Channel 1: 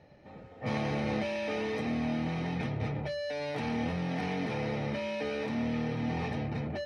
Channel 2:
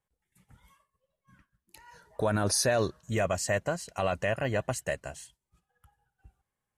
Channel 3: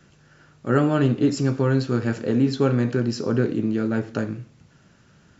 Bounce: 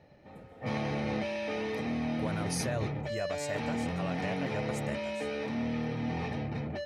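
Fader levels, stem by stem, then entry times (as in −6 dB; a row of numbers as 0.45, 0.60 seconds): −1.0 dB, −9.5 dB, muted; 0.00 s, 0.00 s, muted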